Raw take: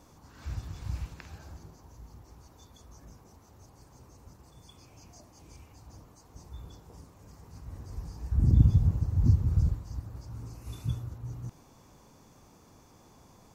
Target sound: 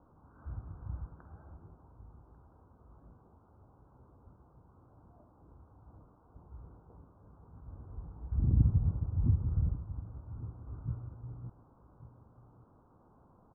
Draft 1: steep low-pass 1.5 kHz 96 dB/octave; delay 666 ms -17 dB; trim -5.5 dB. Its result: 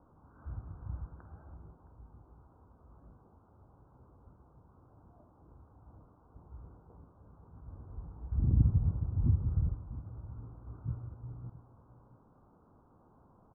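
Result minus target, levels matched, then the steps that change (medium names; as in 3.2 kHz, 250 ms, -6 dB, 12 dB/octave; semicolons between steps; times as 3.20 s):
echo 477 ms early
change: delay 1143 ms -17 dB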